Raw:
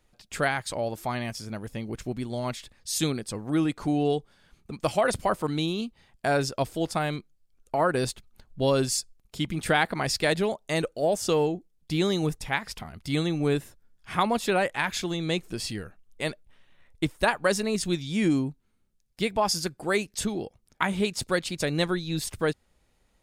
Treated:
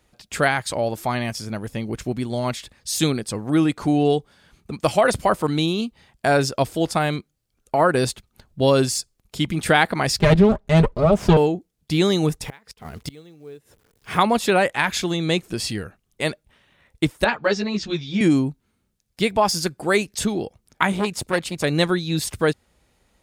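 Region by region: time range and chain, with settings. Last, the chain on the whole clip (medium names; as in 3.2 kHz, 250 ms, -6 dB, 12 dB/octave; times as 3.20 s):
10.19–11.37 s: comb filter that takes the minimum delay 4.9 ms + RIAA curve playback + upward compressor, threshold -36 dBFS
12.43–14.18 s: companded quantiser 6-bit + peaking EQ 450 Hz +9.5 dB 0.34 oct + inverted gate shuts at -22 dBFS, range -27 dB
17.24–18.21 s: inverse Chebyshev low-pass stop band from 10 kHz + three-phase chorus
20.92–21.64 s: dynamic bell 4.7 kHz, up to -5 dB, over -43 dBFS, Q 0.81 + transformer saturation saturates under 1.1 kHz
whole clip: de-esser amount 50%; high-pass 42 Hz; trim +6.5 dB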